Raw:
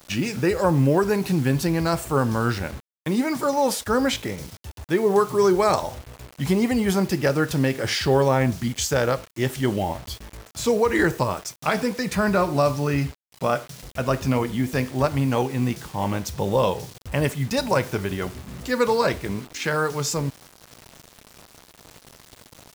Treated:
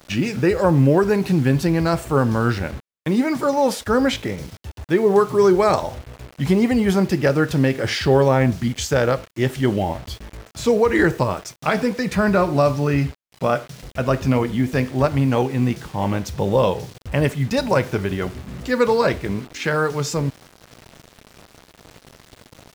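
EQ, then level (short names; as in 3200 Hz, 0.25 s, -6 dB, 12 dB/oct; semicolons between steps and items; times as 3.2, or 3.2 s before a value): bell 980 Hz -2.5 dB 0.79 oct; high shelf 5000 Hz -9.5 dB; +4.0 dB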